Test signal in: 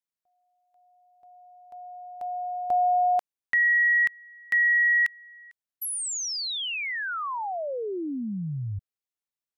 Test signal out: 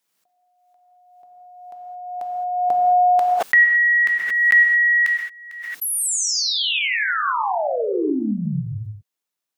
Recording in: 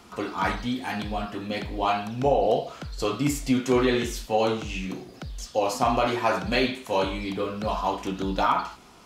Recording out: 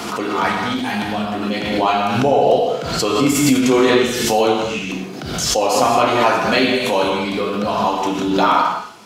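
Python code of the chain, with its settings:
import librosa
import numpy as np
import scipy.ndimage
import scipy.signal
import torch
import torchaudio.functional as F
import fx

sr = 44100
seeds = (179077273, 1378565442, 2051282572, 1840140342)

y = scipy.signal.sosfilt(scipy.signal.butter(2, 160.0, 'highpass', fs=sr, output='sos'), x)
y = fx.rev_gated(y, sr, seeds[0], gate_ms=240, shape='flat', drr_db=1.0)
y = fx.pre_swell(y, sr, db_per_s=37.0)
y = y * 10.0 ** (6.5 / 20.0)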